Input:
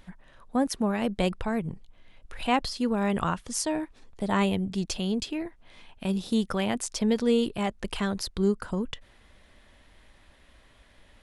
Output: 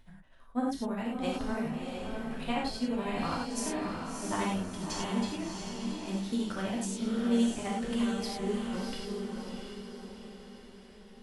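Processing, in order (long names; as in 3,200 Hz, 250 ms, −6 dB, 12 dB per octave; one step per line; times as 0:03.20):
amplitude tremolo 12 Hz, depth 89%
on a send: feedback delay with all-pass diffusion 668 ms, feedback 49%, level −3.5 dB
on the sum: reverb whose tail is shaped and stops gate 130 ms flat, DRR −4 dB
level −8.5 dB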